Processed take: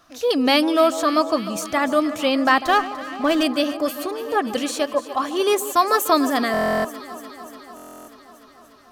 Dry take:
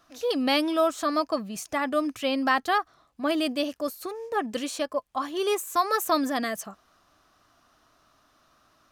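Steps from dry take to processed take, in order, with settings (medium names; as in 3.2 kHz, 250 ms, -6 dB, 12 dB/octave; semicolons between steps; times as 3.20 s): echo whose repeats swap between lows and highs 147 ms, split 1.2 kHz, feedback 85%, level -13.5 dB; buffer glitch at 6.52/7.75 s, samples 1024, times 13; 2.66–3.43 s: sliding maximum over 3 samples; trim +6.5 dB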